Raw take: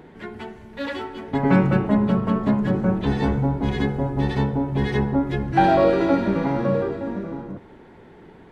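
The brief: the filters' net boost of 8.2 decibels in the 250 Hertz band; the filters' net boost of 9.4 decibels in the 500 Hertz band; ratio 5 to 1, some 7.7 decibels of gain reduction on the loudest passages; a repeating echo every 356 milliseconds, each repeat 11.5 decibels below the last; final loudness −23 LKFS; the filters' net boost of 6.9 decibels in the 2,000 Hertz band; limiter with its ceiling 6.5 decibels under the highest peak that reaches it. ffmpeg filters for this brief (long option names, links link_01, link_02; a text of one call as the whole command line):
ffmpeg -i in.wav -af "equalizer=frequency=250:width_type=o:gain=8,equalizer=frequency=500:width_type=o:gain=9,equalizer=frequency=2000:width_type=o:gain=8,acompressor=threshold=-13dB:ratio=5,alimiter=limit=-11dB:level=0:latency=1,aecho=1:1:356|712|1068:0.266|0.0718|0.0194,volume=-2.5dB" out.wav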